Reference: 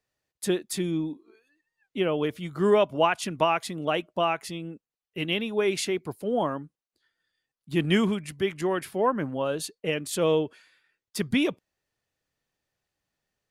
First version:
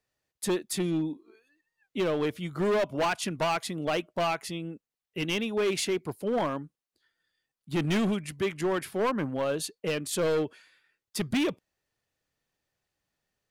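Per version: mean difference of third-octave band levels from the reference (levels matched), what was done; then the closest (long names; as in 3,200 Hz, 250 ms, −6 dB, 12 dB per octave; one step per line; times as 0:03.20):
4.0 dB: hard clipping −23 dBFS, distortion −9 dB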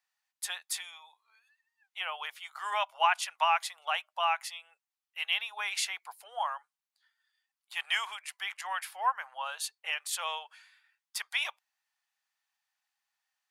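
12.5 dB: elliptic high-pass filter 800 Hz, stop band 60 dB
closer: first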